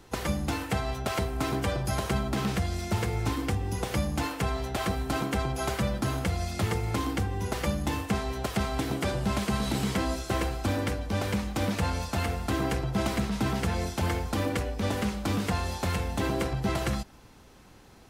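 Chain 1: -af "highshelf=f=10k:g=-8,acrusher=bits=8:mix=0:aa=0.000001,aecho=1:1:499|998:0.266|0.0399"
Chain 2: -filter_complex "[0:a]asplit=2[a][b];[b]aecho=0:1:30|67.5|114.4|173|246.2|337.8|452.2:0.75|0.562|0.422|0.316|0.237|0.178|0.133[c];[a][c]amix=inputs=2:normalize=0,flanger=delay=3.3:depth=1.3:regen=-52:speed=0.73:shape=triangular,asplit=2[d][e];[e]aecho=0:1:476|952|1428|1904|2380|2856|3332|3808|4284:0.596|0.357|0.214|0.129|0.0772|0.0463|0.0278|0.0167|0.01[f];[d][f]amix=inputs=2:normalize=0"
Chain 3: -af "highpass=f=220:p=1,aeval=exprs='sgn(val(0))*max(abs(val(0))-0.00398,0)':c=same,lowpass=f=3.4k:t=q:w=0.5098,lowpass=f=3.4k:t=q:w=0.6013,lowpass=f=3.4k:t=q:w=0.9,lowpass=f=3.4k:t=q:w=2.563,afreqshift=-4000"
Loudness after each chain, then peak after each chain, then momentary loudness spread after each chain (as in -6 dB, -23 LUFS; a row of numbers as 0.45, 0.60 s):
-30.0, -28.5, -30.5 LUFS; -15.0, -14.0, -16.5 dBFS; 2, 3, 3 LU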